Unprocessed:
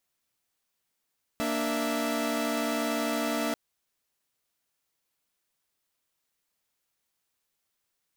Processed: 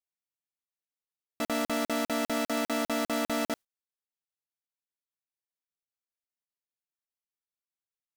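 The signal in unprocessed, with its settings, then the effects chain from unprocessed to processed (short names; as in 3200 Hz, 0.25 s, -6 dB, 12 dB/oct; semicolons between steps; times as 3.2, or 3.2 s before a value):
chord A#3/D4/E5 saw, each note -29 dBFS 2.14 s
gate with hold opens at -22 dBFS; crackling interface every 0.20 s, samples 2048, zero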